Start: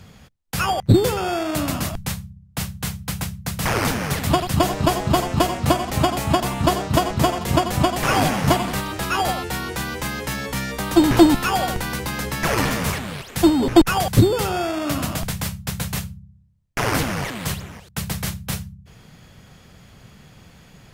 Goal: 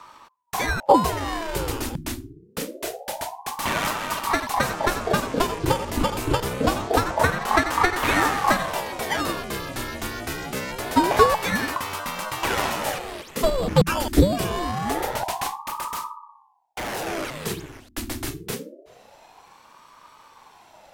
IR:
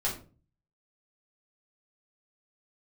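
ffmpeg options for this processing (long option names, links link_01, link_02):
-filter_complex "[0:a]asettb=1/sr,asplit=3[link_01][link_02][link_03];[link_01]atrim=end=15.544[link_04];[link_02]atrim=start=15.54:end=17.07,asetpts=PTS-STARTPTS,afade=type=in:duration=0.004:curve=qsin,afade=type=out:start_time=1.526:duration=0.004:curve=qsin,asoftclip=type=hard:threshold=-24dB[link_05];[link_03]atrim=start=17.066[link_06];[link_04][link_05]acrossfade=duration=0.004:curve1=hsin:curve2=qsin[link_07];[link_07][link_06]acrossfade=duration=0.004:curve1=qsin:curve2=hsin,aphaser=in_gain=1:out_gain=1:delay=2.4:decay=0.26:speed=0.13:type=sinusoidal,aeval=exprs='val(0)*sin(2*PI*620*n/s+620*0.75/0.25*sin(2*PI*0.25*n/s))':channel_layout=same,volume=-1dB"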